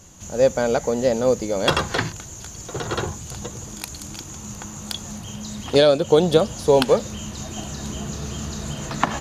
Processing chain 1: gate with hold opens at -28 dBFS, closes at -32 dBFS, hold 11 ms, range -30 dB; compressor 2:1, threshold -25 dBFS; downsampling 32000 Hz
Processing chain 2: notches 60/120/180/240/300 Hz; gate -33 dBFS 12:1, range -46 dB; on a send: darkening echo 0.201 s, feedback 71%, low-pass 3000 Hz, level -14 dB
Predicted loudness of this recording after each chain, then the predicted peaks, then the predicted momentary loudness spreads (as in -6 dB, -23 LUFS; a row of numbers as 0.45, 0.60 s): -28.5, -21.5 LUFS; -7.0, -1.5 dBFS; 10, 20 LU